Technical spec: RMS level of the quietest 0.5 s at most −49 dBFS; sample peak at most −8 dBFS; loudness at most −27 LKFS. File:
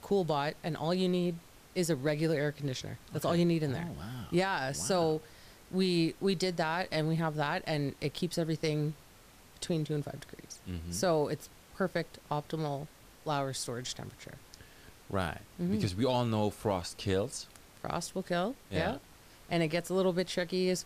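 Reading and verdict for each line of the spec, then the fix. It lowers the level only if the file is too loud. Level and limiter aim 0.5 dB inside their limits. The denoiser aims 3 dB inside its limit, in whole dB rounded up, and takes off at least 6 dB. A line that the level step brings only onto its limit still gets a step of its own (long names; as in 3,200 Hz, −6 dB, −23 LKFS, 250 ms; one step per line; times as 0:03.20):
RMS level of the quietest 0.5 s −57 dBFS: in spec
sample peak −18.5 dBFS: in spec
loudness −33.0 LKFS: in spec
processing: no processing needed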